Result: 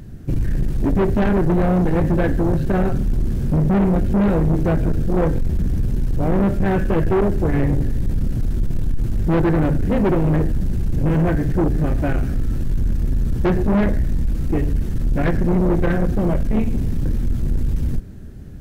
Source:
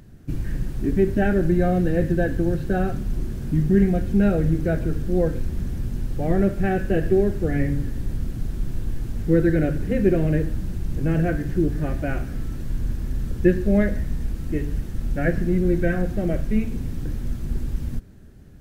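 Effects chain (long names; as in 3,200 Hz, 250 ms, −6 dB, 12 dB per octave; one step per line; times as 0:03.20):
low-shelf EQ 410 Hz +5.5 dB
soft clipping −19 dBFS, distortion −8 dB
level +5.5 dB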